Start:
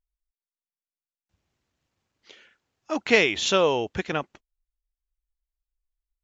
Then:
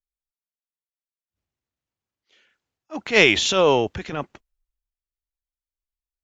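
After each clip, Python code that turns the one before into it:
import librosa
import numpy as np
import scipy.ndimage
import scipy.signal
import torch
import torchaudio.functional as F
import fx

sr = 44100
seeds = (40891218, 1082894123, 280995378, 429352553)

y = fx.transient(x, sr, attack_db=-9, sustain_db=6)
y = fx.band_widen(y, sr, depth_pct=40)
y = y * librosa.db_to_amplitude(3.0)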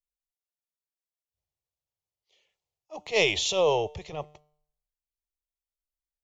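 y = fx.fixed_phaser(x, sr, hz=630.0, stages=4)
y = fx.comb_fb(y, sr, f0_hz=150.0, decay_s=0.62, harmonics='all', damping=0.0, mix_pct=40)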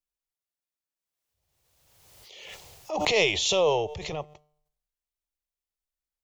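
y = fx.pre_swell(x, sr, db_per_s=33.0)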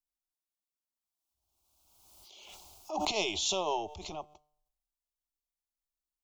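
y = fx.fixed_phaser(x, sr, hz=490.0, stages=6)
y = y * librosa.db_to_amplitude(-3.0)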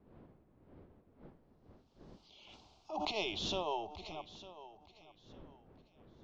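y = fx.dmg_wind(x, sr, seeds[0], corner_hz=360.0, level_db=-52.0)
y = scipy.signal.sosfilt(scipy.signal.butter(4, 4700.0, 'lowpass', fs=sr, output='sos'), y)
y = fx.echo_feedback(y, sr, ms=903, feedback_pct=26, wet_db=-16)
y = y * librosa.db_to_amplitude(-5.0)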